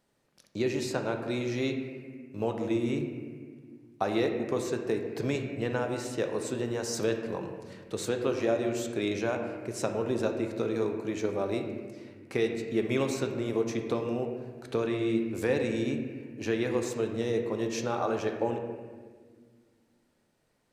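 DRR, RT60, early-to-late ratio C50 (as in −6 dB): 3.5 dB, 1.6 s, 5.5 dB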